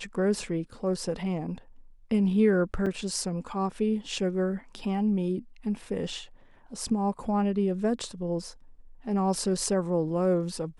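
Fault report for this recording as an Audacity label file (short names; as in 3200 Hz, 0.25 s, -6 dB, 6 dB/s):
2.860000	2.870000	gap 5.6 ms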